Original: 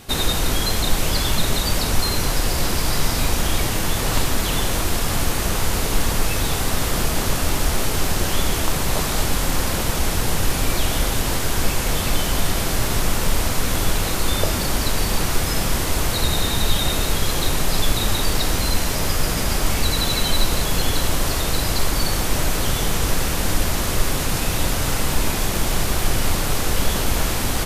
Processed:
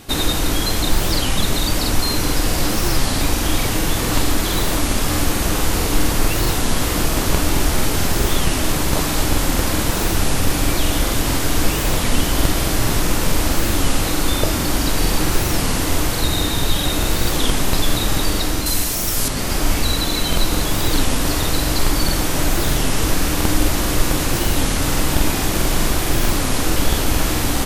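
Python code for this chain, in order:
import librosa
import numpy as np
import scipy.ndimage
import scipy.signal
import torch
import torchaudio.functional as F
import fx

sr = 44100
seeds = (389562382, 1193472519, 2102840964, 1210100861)

y = fx.high_shelf(x, sr, hz=4900.0, db=12.0, at=(18.66, 19.3))
y = fx.rider(y, sr, range_db=10, speed_s=0.5)
y = fx.peak_eq(y, sr, hz=300.0, db=9.5, octaves=0.21)
y = fx.buffer_crackle(y, sr, first_s=0.92, period_s=0.22, block=2048, kind='repeat')
y = fx.record_warp(y, sr, rpm=33.33, depth_cents=250.0)
y = y * 10.0 ** (1.5 / 20.0)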